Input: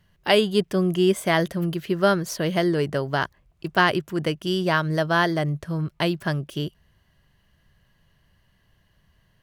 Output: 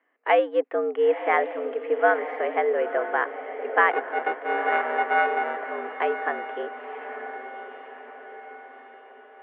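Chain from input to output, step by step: 3.91–5.61 s: sorted samples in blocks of 64 samples; echo that smears into a reverb 976 ms, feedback 51%, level -10 dB; mistuned SSB +94 Hz 280–2200 Hz

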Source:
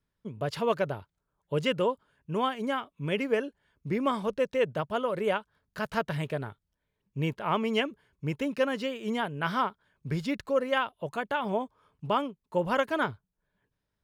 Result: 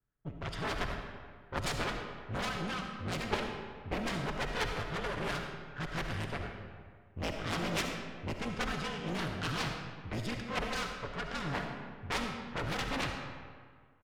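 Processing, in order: comb filter that takes the minimum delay 0.58 ms; frequency shift -51 Hz; comb 7 ms, depth 44%; level-controlled noise filter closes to 1.7 kHz, open at -26 dBFS; Chebyshev shaper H 3 -9 dB, 7 -19 dB, 8 -20 dB, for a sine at -14 dBFS; on a send: reverberation RT60 1.8 s, pre-delay 25 ms, DRR 3.5 dB; on the sum: trim -2 dB

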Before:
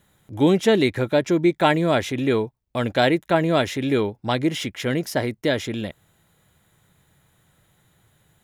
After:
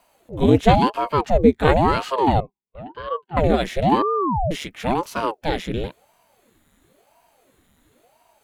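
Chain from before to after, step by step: harmonic-percussive split percussive -11 dB; 2.40–3.37 s: vowel filter u; dynamic bell 290 Hz, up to +5 dB, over -40 dBFS, Q 4.5; 4.02–4.51 s: bleep 379 Hz -21.5 dBFS; ring modulator with a swept carrier 450 Hz, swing 85%, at 0.97 Hz; trim +6.5 dB

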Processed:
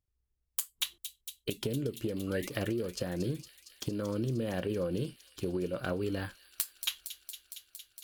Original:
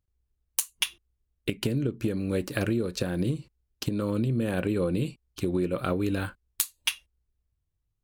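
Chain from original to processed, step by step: painted sound rise, 2.27–2.49 s, 1.1–2.2 kHz -35 dBFS; feedback echo behind a high-pass 230 ms, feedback 81%, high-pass 3.6 kHz, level -8.5 dB; formant shift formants +2 st; trim -6 dB

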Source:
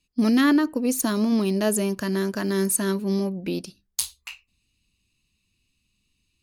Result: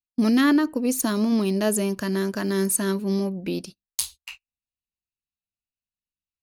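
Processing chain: gate -40 dBFS, range -29 dB

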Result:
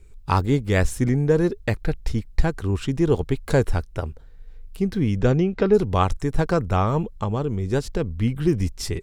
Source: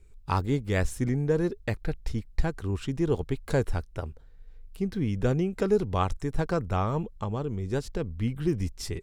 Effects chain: 5.16–5.73 s: low-pass 8.1 kHz -> 4 kHz 24 dB/octave; trim +6.5 dB

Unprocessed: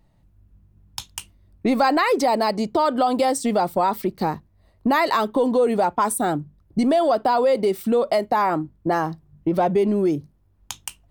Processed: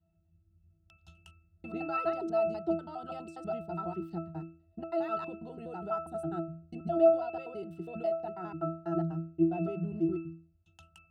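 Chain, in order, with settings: slices played last to first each 82 ms, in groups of 2; peaking EQ 16 kHz +14.5 dB 2.5 oct; in parallel at -8 dB: saturation -13 dBFS, distortion -14 dB; on the sum: pitch-class resonator E, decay 0.41 s

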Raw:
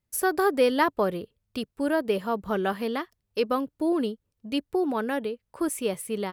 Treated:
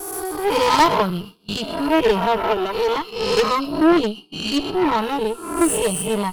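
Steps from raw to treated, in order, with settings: reverse spectral sustain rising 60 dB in 1.23 s; 2.37–2.96 s: resonant low shelf 250 Hz -9 dB, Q 3; on a send: feedback echo behind a high-pass 126 ms, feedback 62%, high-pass 2.4 kHz, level -6.5 dB; on the sum: sine folder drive 4 dB, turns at -5 dBFS; gate with hold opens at -15 dBFS; static phaser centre 370 Hz, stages 8; in parallel at +2 dB: peak limiter -13.5 dBFS, peak gain reduction 7.5 dB; on the sum: spectral noise reduction 13 dB; Chebyshev shaper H 2 -8 dB, 8 -17 dB, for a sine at -2.5 dBFS; trim -3 dB

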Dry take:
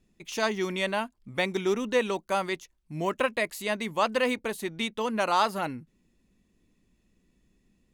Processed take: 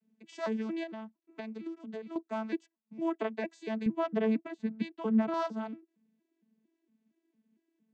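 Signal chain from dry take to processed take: vocoder on a broken chord bare fifth, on A3, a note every 229 ms; 0.83–2.16 s: compression 8:1, threshold -34 dBFS, peak gain reduction 16.5 dB; 3.86–5.34 s: tone controls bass +11 dB, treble -8 dB; trim -4.5 dB

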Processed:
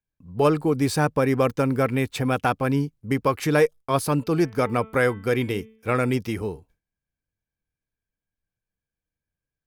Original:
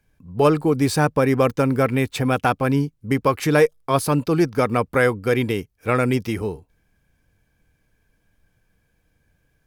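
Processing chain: gate with hold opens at -48 dBFS; 4.15–6.16 s: de-hum 220.6 Hz, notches 16; trim -3 dB

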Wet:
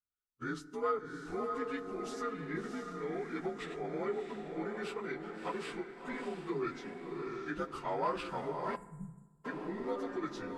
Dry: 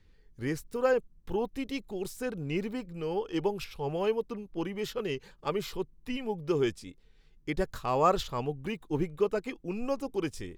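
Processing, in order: frequency axis rescaled in octaves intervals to 88%; on a send: echo that smears into a reverb 655 ms, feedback 40%, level -6 dB; on the sum: spectral selection erased 8.76–9.44 s, 210–6800 Hz; saturation -18 dBFS, distortion -23 dB; peaking EQ 1.3 kHz +15 dB 0.37 oct; compression 1.5:1, threshold -35 dBFS, peak gain reduction 6 dB; bass shelf 99 Hz -10.5 dB; hum notches 50/100/150 Hz; expander -42 dBFS; FDN reverb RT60 1.3 s, low-frequency decay 1.35×, high-frequency decay 0.4×, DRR 15.5 dB; trim -2.5 dB

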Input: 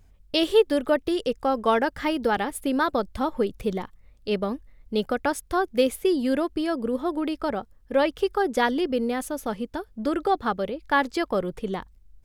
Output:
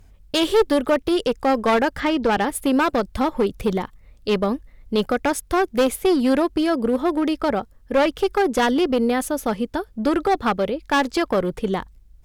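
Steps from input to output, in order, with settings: 2.00–2.45 s: low-pass 5 kHz 12 dB/octave; one-sided clip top -23 dBFS, bottom -14 dBFS; loudness maximiser +15 dB; trim -8.5 dB

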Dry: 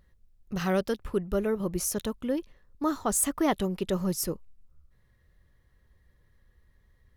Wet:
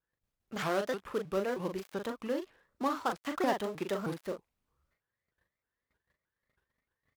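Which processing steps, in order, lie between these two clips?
dead-time distortion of 0.11 ms; gate -58 dBFS, range -17 dB; high-pass 960 Hz 6 dB/octave; treble shelf 2.9 kHz -10 dB; in parallel at -2 dB: compression, threshold -38 dBFS, peak gain reduction 11 dB; on the sum: doubling 40 ms -6 dB; vibrato with a chosen wave saw up 3.2 Hz, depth 250 cents

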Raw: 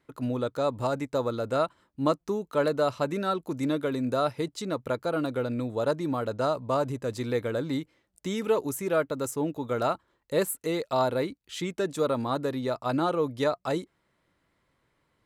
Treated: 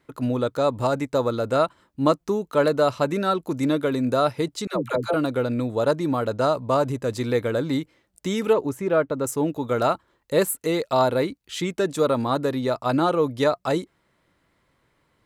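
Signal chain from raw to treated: 4.67–5.14 s: phase dispersion lows, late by 93 ms, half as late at 470 Hz; 8.53–9.27 s: low-pass 1.8 kHz 6 dB/octave; trim +5.5 dB

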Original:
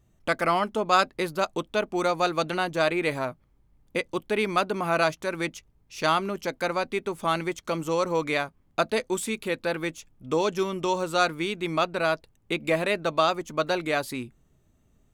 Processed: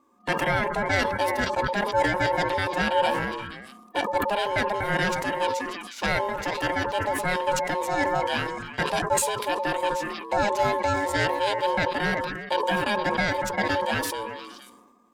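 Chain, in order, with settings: every band turned upside down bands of 500 Hz; in parallel at +2.5 dB: peak limiter -15.5 dBFS, peak gain reduction 8 dB; on the sum: peaking EQ 170 Hz +7.5 dB 0.46 oct; on a send: repeats whose band climbs or falls 117 ms, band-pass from 190 Hz, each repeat 1.4 oct, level -8 dB; on the sum: ring modulator 720 Hz; decay stretcher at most 39 dB/s; trim -5.5 dB

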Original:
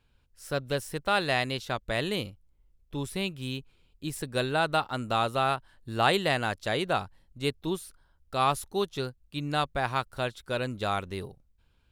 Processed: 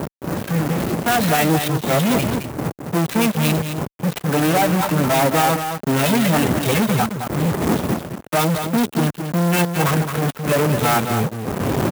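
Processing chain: harmonic-percussive separation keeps harmonic; wind noise 200 Hz -44 dBFS; time-frequency box 8.40–9.79 s, 450–1200 Hz -11 dB; reverb removal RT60 0.53 s; dynamic bell 1.4 kHz, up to -4 dB, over -45 dBFS, Q 2.1; compression 6:1, threshold -29 dBFS, peak gain reduction 7.5 dB; formant-preserving pitch shift +3 st; fuzz box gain 56 dB, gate -51 dBFS; band-pass 140–3800 Hz; on a send: delay 217 ms -7.5 dB; on the sum: sampling jitter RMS 0.049 ms; trim -1.5 dB

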